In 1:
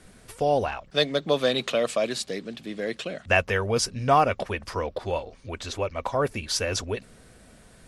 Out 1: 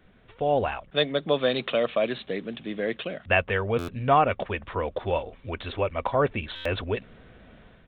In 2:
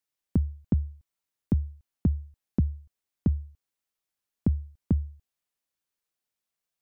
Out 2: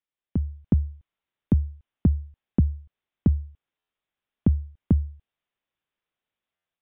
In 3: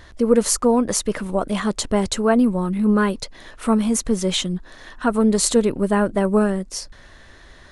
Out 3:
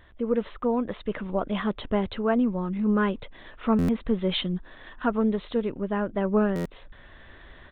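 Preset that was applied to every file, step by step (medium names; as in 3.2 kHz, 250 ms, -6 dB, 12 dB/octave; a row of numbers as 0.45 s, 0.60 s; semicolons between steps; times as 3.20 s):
level rider gain up to 8 dB; resampled via 8 kHz; buffer glitch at 3.78/6.55 s, samples 512, times 8; normalise loudness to -27 LUFS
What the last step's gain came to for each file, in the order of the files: -6.0 dB, -3.5 dB, -9.5 dB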